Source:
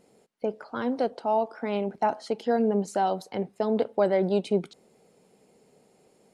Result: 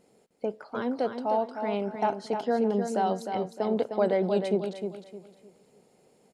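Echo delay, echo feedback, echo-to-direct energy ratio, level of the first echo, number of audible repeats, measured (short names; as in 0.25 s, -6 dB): 0.307 s, 30%, -6.5 dB, -7.0 dB, 3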